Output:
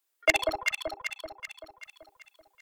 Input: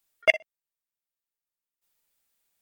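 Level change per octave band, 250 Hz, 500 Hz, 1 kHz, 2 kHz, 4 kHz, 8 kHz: can't be measured, −0.5 dB, +8.0 dB, −1.5 dB, +2.5 dB, +12.5 dB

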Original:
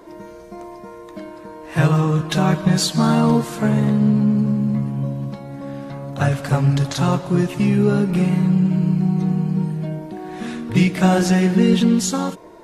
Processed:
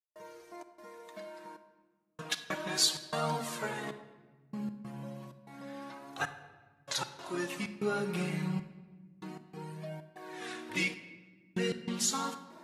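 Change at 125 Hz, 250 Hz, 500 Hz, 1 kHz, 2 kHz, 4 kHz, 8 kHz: −25.5, −23.5, −15.5, −14.0, −9.5, −7.0, −7.0 decibels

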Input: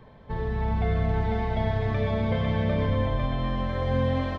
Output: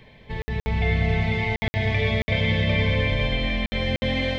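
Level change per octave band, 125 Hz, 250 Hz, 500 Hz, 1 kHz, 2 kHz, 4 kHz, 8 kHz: +2.0 dB, +1.5 dB, +1.0 dB, −2.0 dB, +11.5 dB, +13.0 dB, can't be measured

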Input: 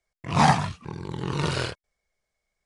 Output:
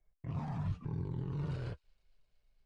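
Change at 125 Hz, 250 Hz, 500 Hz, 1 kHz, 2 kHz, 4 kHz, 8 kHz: −9.0 dB, −13.0 dB, −17.0 dB, −26.5 dB, −26.5 dB, below −25 dB, below −30 dB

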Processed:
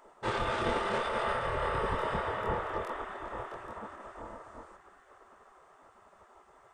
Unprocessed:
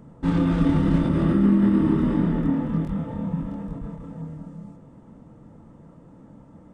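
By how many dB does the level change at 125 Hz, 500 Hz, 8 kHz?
−19.0 dB, −2.5 dB, can't be measured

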